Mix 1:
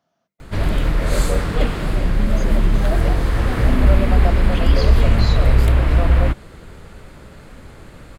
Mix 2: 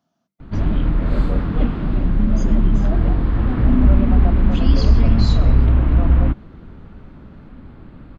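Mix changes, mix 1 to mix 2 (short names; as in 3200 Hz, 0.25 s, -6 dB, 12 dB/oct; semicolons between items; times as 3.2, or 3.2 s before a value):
background: add air absorption 410 m; master: add graphic EQ 250/500/2000 Hz +7/-7/-6 dB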